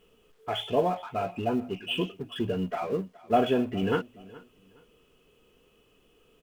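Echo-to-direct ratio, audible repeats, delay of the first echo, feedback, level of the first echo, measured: −20.5 dB, 2, 419 ms, 26%, −21.0 dB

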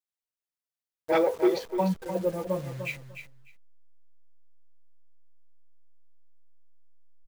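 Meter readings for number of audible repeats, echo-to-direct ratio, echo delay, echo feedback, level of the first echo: 2, −9.5 dB, 299 ms, 17%, −9.5 dB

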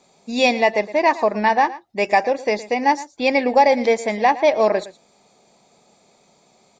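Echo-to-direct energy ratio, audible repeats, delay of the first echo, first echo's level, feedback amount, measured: −17.0 dB, 1, 114 ms, −17.0 dB, repeats not evenly spaced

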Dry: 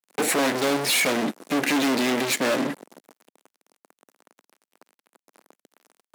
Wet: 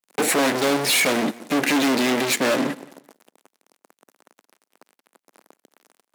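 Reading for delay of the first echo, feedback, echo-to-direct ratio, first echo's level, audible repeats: 178 ms, 24%, −21.0 dB, −21.0 dB, 2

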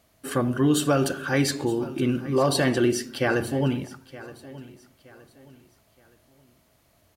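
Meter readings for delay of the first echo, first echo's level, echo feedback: 920 ms, −18.0 dB, 34%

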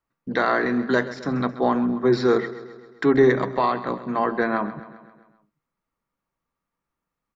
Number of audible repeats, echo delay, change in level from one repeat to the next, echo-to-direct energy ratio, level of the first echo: 5, 132 ms, −5.0 dB, −13.5 dB, −15.0 dB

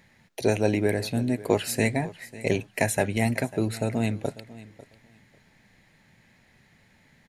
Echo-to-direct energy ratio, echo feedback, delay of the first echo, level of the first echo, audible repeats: −18.5 dB, 18%, 546 ms, −18.5 dB, 2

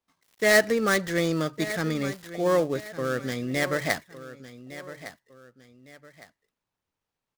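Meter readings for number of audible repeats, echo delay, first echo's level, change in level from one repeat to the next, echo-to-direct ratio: 2, 1,159 ms, −14.5 dB, −9.0 dB, −14.0 dB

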